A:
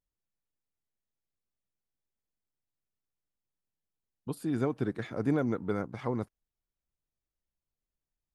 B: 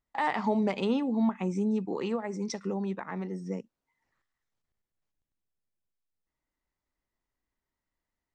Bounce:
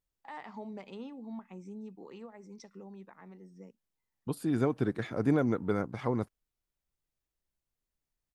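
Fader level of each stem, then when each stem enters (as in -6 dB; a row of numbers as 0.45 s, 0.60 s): +1.5 dB, -16.0 dB; 0.00 s, 0.10 s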